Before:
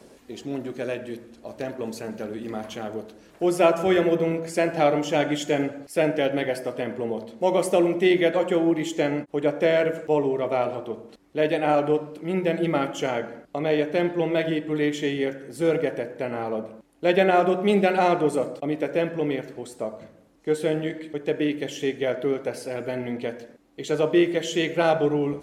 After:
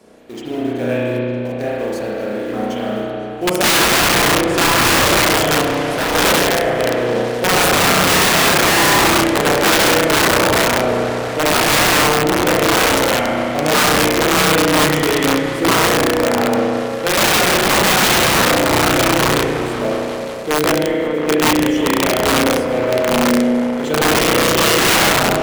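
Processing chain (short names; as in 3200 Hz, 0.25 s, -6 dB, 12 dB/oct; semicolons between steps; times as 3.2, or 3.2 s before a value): in parallel at -7 dB: bit-crush 6-bit; on the sum: spring tank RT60 2.2 s, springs 33 ms, chirp 45 ms, DRR -7 dB; wrapped overs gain 8.5 dB; low shelf 70 Hz -8.5 dB; 5.61–6.15 hard clip -18 dBFS, distortion -24 dB; on a send: repeats that get brighter 0.181 s, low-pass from 400 Hz, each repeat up 1 oct, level -6 dB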